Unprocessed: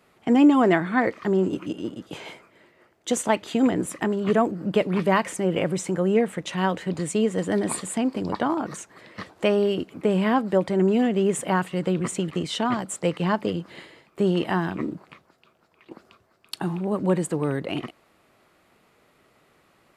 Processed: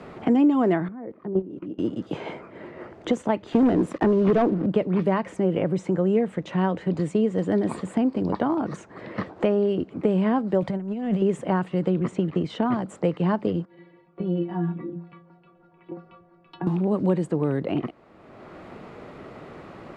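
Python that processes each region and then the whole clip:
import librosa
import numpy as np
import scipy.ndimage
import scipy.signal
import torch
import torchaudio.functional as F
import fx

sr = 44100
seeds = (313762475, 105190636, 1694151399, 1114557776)

y = fx.chain(x, sr, fx.bandpass_q(hz=300.0, q=0.61),
    fx.level_steps(step_db=20), at=(0.88, 1.79))
y = fx.chain(y, sr, fx.highpass(hz=220.0, slope=6),
    fx.high_shelf(hz=2400.0, db=-10.0),
    fx.leveller(passes=3), at=(3.52, 4.66))
y = fx.chain(y, sr, fx.peak_eq(hz=360.0, db=-12.0, octaves=0.62),
    fx.over_compress(threshold_db=-29.0, ratio=-0.5), at=(10.62, 11.22))
y = fx.chain(y, sr, fx.lowpass(hz=9600.0, slope=12),
    fx.high_shelf(hz=4500.0, db=-7.0), at=(11.9, 12.5))
y = fx.chain(y, sr, fx.air_absorb(metres=340.0),
    fx.stiff_resonator(f0_hz=170.0, decay_s=0.31, stiffness=0.008), at=(13.65, 16.67))
y = scipy.signal.sosfilt(scipy.signal.butter(2, 5900.0, 'lowpass', fs=sr, output='sos'), y)
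y = fx.tilt_shelf(y, sr, db=6.0, hz=1200.0)
y = fx.band_squash(y, sr, depth_pct=70)
y = y * 10.0 ** (-4.5 / 20.0)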